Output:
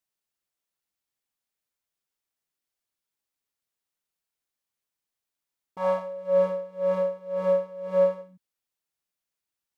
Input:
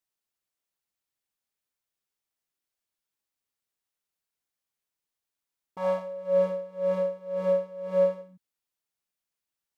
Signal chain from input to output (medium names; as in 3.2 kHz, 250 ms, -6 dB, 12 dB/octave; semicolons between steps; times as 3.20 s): dynamic bell 1.1 kHz, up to +5 dB, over -40 dBFS, Q 0.97